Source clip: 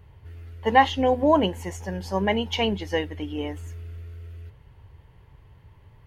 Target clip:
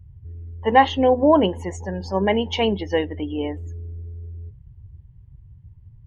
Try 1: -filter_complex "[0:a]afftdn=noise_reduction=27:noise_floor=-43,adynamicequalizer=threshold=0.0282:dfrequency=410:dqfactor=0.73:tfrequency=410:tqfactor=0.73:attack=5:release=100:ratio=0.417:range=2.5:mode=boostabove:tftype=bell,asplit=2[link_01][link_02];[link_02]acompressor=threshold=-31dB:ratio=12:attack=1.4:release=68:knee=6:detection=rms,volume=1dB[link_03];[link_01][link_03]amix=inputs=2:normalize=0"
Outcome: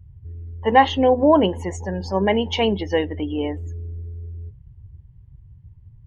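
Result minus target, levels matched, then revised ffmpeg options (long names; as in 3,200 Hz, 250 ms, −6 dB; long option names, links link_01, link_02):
downward compressor: peak gain reduction −7.5 dB
-filter_complex "[0:a]afftdn=noise_reduction=27:noise_floor=-43,adynamicequalizer=threshold=0.0282:dfrequency=410:dqfactor=0.73:tfrequency=410:tqfactor=0.73:attack=5:release=100:ratio=0.417:range=2.5:mode=boostabove:tftype=bell,asplit=2[link_01][link_02];[link_02]acompressor=threshold=-39dB:ratio=12:attack=1.4:release=68:knee=6:detection=rms,volume=1dB[link_03];[link_01][link_03]amix=inputs=2:normalize=0"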